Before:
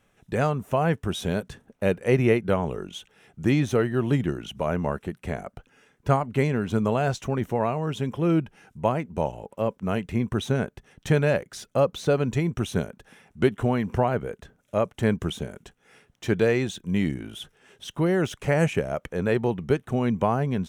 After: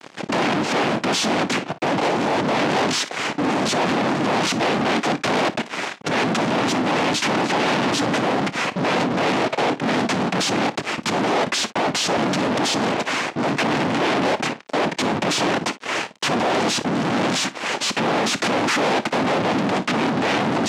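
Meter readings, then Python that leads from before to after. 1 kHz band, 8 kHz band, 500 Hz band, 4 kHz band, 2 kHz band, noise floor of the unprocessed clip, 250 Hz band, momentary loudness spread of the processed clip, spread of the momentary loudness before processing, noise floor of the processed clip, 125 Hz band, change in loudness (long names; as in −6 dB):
+10.5 dB, +15.5 dB, +2.5 dB, +16.0 dB, +11.0 dB, −67 dBFS, +4.5 dB, 4 LU, 12 LU, −39 dBFS, −3.5 dB, +5.0 dB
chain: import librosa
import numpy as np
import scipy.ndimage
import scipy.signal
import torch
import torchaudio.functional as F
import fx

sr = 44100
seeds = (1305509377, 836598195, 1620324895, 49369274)

p1 = fx.spec_repair(x, sr, seeds[0], start_s=12.33, length_s=0.66, low_hz=450.0, high_hz=1700.0, source='before')
p2 = fx.over_compress(p1, sr, threshold_db=-32.0, ratio=-1.0)
p3 = fx.noise_vocoder(p2, sr, seeds[1], bands=4)
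p4 = fx.fuzz(p3, sr, gain_db=48.0, gate_db=-56.0)
p5 = fx.bandpass_edges(p4, sr, low_hz=210.0, high_hz=5500.0)
p6 = p5 + fx.room_early_taps(p5, sr, ms=(27, 57), db=(-17.0, -17.5), dry=0)
y = p6 * librosa.db_to_amplitude(-4.5)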